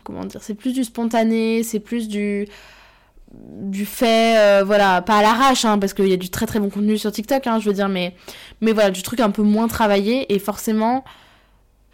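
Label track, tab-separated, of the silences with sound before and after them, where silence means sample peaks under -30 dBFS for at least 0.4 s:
2.470000	3.400000	silence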